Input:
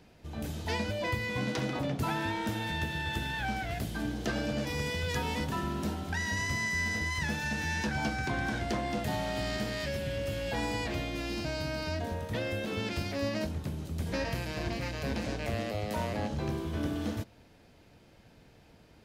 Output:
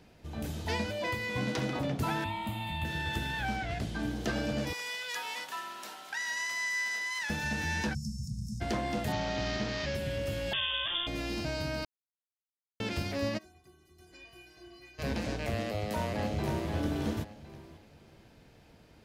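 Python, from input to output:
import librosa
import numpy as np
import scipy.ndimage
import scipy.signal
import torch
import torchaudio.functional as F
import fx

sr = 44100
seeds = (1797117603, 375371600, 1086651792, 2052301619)

y = fx.low_shelf(x, sr, hz=150.0, db=-9.0, at=(0.86, 1.34))
y = fx.fixed_phaser(y, sr, hz=1600.0, stages=6, at=(2.24, 2.85))
y = fx.lowpass(y, sr, hz=7200.0, slope=12, at=(3.56, 4.03))
y = fx.highpass(y, sr, hz=980.0, slope=12, at=(4.73, 7.3))
y = fx.cheby1_bandstop(y, sr, low_hz=210.0, high_hz=5200.0, order=5, at=(7.93, 8.6), fade=0.02)
y = fx.delta_mod(y, sr, bps=32000, step_db=-35.0, at=(9.12, 9.95))
y = fx.freq_invert(y, sr, carrier_hz=3500, at=(10.53, 11.07))
y = fx.stiff_resonator(y, sr, f0_hz=360.0, decay_s=0.33, stiffness=0.008, at=(13.37, 14.98), fade=0.02)
y = fx.echo_throw(y, sr, start_s=15.65, length_s=1.06, ms=530, feedback_pct=25, wet_db=-4.5)
y = fx.edit(y, sr, fx.silence(start_s=11.85, length_s=0.95), tone=tone)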